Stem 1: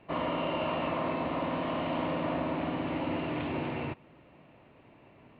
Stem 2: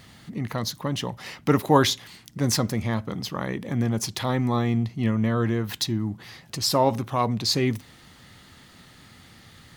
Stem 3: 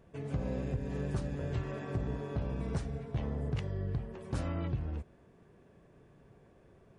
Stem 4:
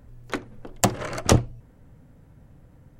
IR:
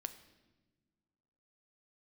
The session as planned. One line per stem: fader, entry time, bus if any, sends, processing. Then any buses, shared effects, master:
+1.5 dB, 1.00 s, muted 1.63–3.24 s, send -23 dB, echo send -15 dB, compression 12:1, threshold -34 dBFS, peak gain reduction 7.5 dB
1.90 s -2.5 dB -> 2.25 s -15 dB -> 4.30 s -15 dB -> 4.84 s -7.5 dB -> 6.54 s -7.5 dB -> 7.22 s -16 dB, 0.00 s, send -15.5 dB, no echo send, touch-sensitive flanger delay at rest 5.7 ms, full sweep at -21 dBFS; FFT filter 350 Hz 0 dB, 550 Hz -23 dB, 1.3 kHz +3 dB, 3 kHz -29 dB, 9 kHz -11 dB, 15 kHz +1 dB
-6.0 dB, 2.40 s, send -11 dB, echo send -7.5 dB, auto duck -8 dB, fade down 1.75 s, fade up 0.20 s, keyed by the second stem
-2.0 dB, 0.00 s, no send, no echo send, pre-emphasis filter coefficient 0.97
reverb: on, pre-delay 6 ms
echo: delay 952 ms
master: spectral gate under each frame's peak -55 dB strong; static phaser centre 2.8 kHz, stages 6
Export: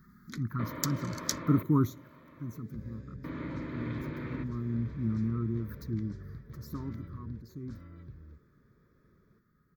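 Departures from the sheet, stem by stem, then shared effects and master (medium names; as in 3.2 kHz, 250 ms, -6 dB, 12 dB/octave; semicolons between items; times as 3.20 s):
stem 1: entry 1.00 s -> 0.50 s; master: missing spectral gate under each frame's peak -55 dB strong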